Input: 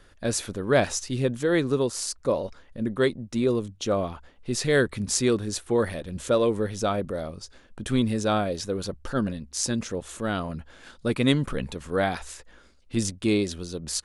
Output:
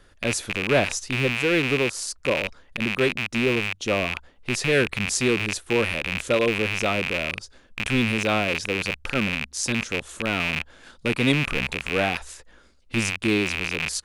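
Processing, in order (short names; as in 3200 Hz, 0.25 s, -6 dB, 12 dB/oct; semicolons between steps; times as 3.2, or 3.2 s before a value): rattling part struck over -41 dBFS, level -13 dBFS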